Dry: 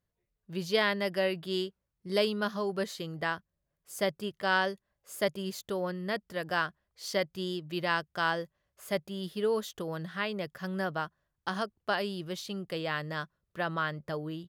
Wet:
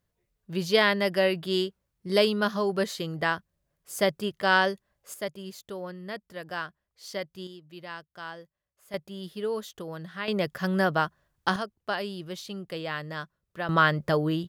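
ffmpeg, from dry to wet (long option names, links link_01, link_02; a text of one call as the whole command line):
ffmpeg -i in.wav -af "asetnsamples=nb_out_samples=441:pad=0,asendcmd='5.14 volume volume -4dB;7.47 volume volume -10.5dB;8.94 volume volume -1.5dB;10.28 volume volume 8.5dB;11.56 volume volume 0dB;13.69 volume volume 11dB',volume=5.5dB" out.wav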